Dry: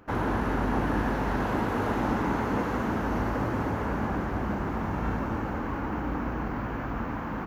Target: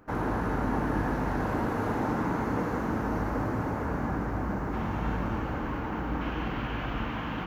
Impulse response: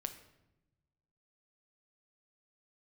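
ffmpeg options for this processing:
-filter_complex "[0:a]asetnsamples=nb_out_samples=441:pad=0,asendcmd='4.73 equalizer g 4.5;6.21 equalizer g 15',equalizer=frequency=3100:width=1.6:gain=-5.5[link_01];[1:a]atrim=start_sample=2205[link_02];[link_01][link_02]afir=irnorm=-1:irlink=0"

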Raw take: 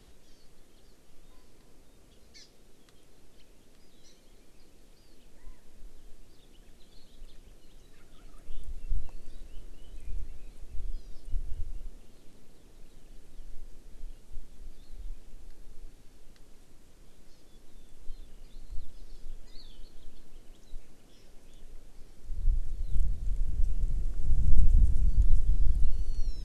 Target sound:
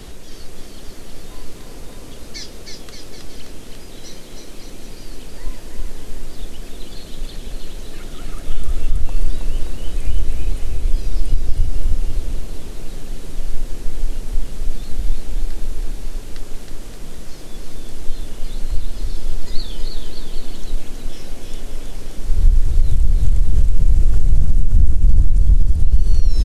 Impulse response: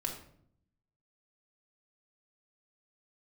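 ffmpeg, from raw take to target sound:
-filter_complex "[0:a]asettb=1/sr,asplit=3[link_01][link_02][link_03];[link_01]atrim=end=24.904[link_04];[link_02]atrim=start=24.9:end=25.61,asetpts=PTS-STARTPTS,afade=type=in:duration=0.004:curve=qsin,afade=type=out:start_time=0.706:duration=0.004:curve=qsin,aeval=exprs='if(lt(val(0),0),0.447*val(0),val(0))':channel_layout=same[link_05];[link_03]atrim=start=25.606[link_06];[link_04][link_05]acrossfade=duration=0.004:curve1=hsin:curve2=qsin[link_07];[link_07][link_06]acrossfade=duration=0.004:curve1=qsin:curve2=hsin,acompressor=threshold=-25dB:ratio=6,aecho=1:1:320|576|780.8|944.6|1076:0.631|0.398|0.251|0.158|0.1,alimiter=level_in=21.5dB:limit=-1dB:release=50:level=0:latency=1,volume=-1dB"

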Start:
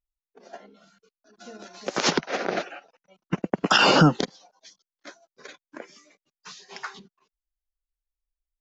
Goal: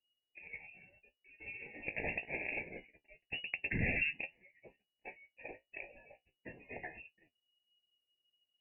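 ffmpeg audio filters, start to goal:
ffmpeg -i in.wav -filter_complex "[0:a]flanger=delay=9.9:depth=9:regen=43:speed=0.26:shape=triangular,asettb=1/sr,asplit=3[link_01][link_02][link_03];[link_01]atrim=end=2.764[link_04];[link_02]atrim=start=2.76:end=3.49,asetpts=PTS-STARTPTS,afade=type=in:duration=0.004:curve=qsin,afade=type=out:start_time=0.726:duration=0.004:curve=qsin,aeval=exprs='(tanh(28.2*val(0)+0.35)-tanh(0.35))/28.2':channel_layout=same[link_05];[link_03]atrim=start=3.486[link_06];[link_04][link_05]acrossfade=duration=0.004:curve1=hsin:curve2=qsin[link_07];[link_07][link_06]acrossfade=duration=0.004:curve1=qsin:curve2=hsin,asuperstop=centerf=1600:order=8:qfactor=1.7,acompressor=threshold=-47dB:ratio=2,equalizer=frequency=240:width=0.3:gain=-5.5,lowpass=frequency=2500:width_type=q:width=0.5098,lowpass=frequency=2500:width_type=q:width=0.6013,lowpass=frequency=2500:width_type=q:width=0.9,lowpass=frequency=2500:width_type=q:width=2.563,afreqshift=-2900,equalizer=frequency=1600:width=0.55:gain=-13.5,volume=16.5dB" out.wav

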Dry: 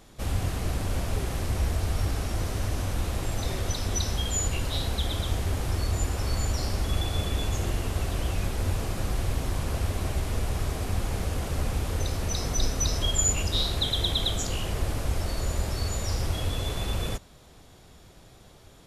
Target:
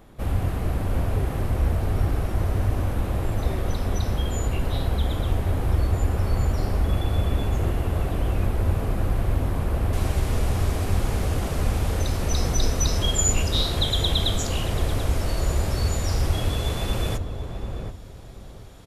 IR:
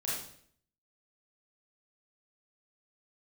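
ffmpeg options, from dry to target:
-filter_complex "[0:a]asetnsamples=nb_out_samples=441:pad=0,asendcmd='9.93 equalizer g -2.5',equalizer=frequency=6100:width_type=o:width=2.1:gain=-14,asplit=2[link_01][link_02];[link_02]adelay=735,lowpass=frequency=890:poles=1,volume=-5dB,asplit=2[link_03][link_04];[link_04]adelay=735,lowpass=frequency=890:poles=1,volume=0.27,asplit=2[link_05][link_06];[link_06]adelay=735,lowpass=frequency=890:poles=1,volume=0.27,asplit=2[link_07][link_08];[link_08]adelay=735,lowpass=frequency=890:poles=1,volume=0.27[link_09];[link_01][link_03][link_05][link_07][link_09]amix=inputs=5:normalize=0,volume=4dB"

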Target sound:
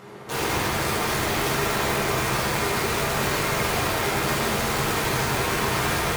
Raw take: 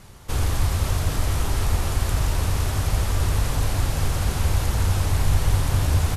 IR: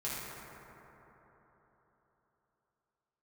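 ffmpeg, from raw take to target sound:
-filter_complex "[0:a]highpass=150,aeval=exprs='(tanh(10*val(0)+0.25)-tanh(0.25))/10':channel_layout=same,bass=frequency=250:gain=-9,treble=frequency=4000:gain=-13,acompressor=mode=upward:threshold=-50dB:ratio=2.5,equalizer=frequency=340:width_type=o:width=1.9:gain=6,aeval=exprs='(mod(22.4*val(0)+1,2)-1)/22.4':channel_layout=same[link_01];[1:a]atrim=start_sample=2205,afade=type=out:start_time=0.3:duration=0.01,atrim=end_sample=13671[link_02];[link_01][link_02]afir=irnorm=-1:irlink=0,volume=6dB"

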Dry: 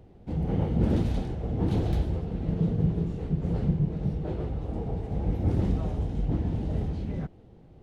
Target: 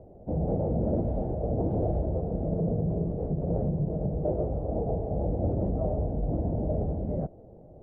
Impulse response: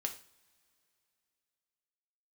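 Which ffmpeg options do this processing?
-af "alimiter=limit=-21.5dB:level=0:latency=1:release=46,lowpass=frequency=620:width_type=q:width=4.9"

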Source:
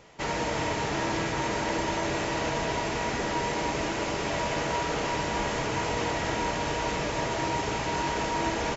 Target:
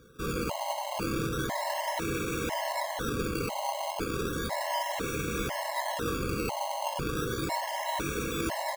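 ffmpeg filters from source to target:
ffmpeg -i in.wav -af "acrusher=samples=17:mix=1:aa=0.000001:lfo=1:lforange=17:lforate=0.34,afftfilt=real='re*gt(sin(2*PI*1*pts/sr)*(1-2*mod(floor(b*sr/1024/550),2)),0)':imag='im*gt(sin(2*PI*1*pts/sr)*(1-2*mod(floor(b*sr/1024/550),2)),0)':win_size=1024:overlap=0.75" out.wav

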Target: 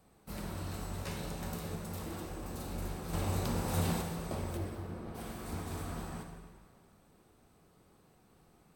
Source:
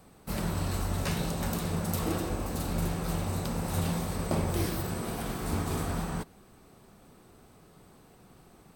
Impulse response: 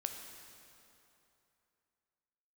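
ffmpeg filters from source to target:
-filter_complex "[0:a]asettb=1/sr,asplit=3[link_01][link_02][link_03];[link_01]atrim=end=1.754[link_04];[link_02]atrim=start=1.75:end=2.43,asetpts=PTS-STARTPTS,afade=type=in:duration=0.004:curve=qsin,afade=type=out:start_time=0.676:duration=0.004:curve=qsin,asoftclip=type=hard:threshold=-30dB[link_05];[link_03]atrim=start=2.426[link_06];[link_04][link_05]acrossfade=duration=0.004:curve1=hsin:curve2=qsin[link_07];[link_07][link_06]acrossfade=duration=0.004:curve1=qsin:curve2=hsin,asettb=1/sr,asplit=3[link_08][link_09][link_10];[link_08]atrim=end=3.134[link_11];[link_09]atrim=start=3.13:end=4.02,asetpts=PTS-STARTPTS,afade=type=in:duration=0.004:curve=qsin,afade=type=out:start_time=0.886:duration=0.004:curve=qsin,acontrast=90[link_12];[link_10]atrim=start=4.016[link_13];[link_11][link_12]acrossfade=duration=0.004:curve1=hsin:curve2=qsin[link_14];[link_14][link_13]acrossfade=duration=0.004:curve1=qsin:curve2=hsin,asplit=3[link_15][link_16][link_17];[link_15]afade=type=out:start_time=4.56:duration=0.02[link_18];[link_16]lowpass=frequency=1100:poles=1,afade=type=in:start_time=4.56:duration=0.02,afade=type=out:start_time=5.14:duration=0.02[link_19];[link_17]afade=type=in:start_time=5.14:duration=0.02[link_20];[link_18][link_19][link_20]amix=inputs=3:normalize=0[link_21];[1:a]atrim=start_sample=2205,asetrate=70560,aresample=44100[link_22];[link_21][link_22]afir=irnorm=-1:irlink=0,volume=-4dB"

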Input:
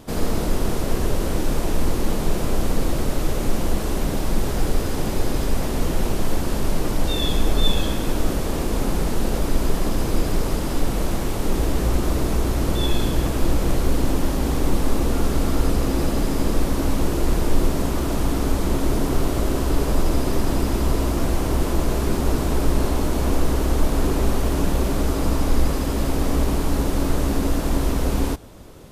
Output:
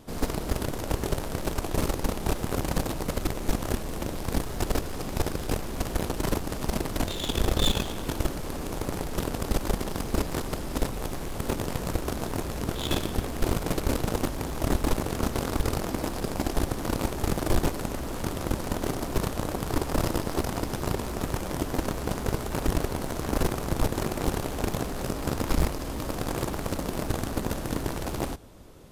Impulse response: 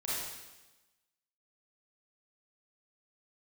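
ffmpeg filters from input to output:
-af "aeval=exprs='0.562*(cos(1*acos(clip(val(0)/0.562,-1,1)))-cos(1*PI/2))+0.224*(cos(3*acos(clip(val(0)/0.562,-1,1)))-cos(3*PI/2))':channel_layout=same,volume=23dB,asoftclip=hard,volume=-23dB,volume=7.5dB"

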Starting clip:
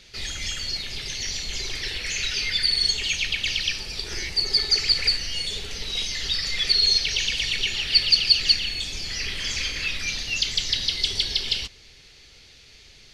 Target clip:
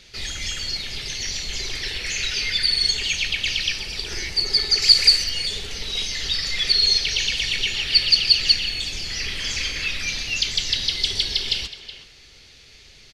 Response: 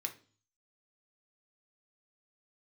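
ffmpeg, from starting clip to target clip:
-filter_complex "[0:a]asettb=1/sr,asplit=3[link_01][link_02][link_03];[link_01]atrim=end=4.824[link_04];[link_02]atrim=start=4.82:end=5.24,asetpts=PTS-STARTPTS,afade=type=in:duration=0.004:curve=qsin,afade=type=out:start_time=0.416:duration=0.004:curve=qsin,bass=frequency=250:gain=-2,treble=frequency=4000:gain=10[link_05];[link_03]atrim=start=5.236[link_06];[link_04][link_05]acrossfade=duration=0.004:curve1=hsin:curve2=qsin[link_07];[link_07][link_06]acrossfade=duration=0.004:curve1=qsin:curve2=hsin,asplit=2[link_08][link_09];[link_09]adelay=370,highpass=300,lowpass=3400,asoftclip=type=hard:threshold=-12.5dB,volume=-11dB[link_10];[link_08][link_10]amix=inputs=2:normalize=0,asplit=2[link_11][link_12];[1:a]atrim=start_sample=2205,adelay=127[link_13];[link_12][link_13]afir=irnorm=-1:irlink=0,volume=-16dB[link_14];[link_11][link_14]amix=inputs=2:normalize=0,volume=1.5dB"

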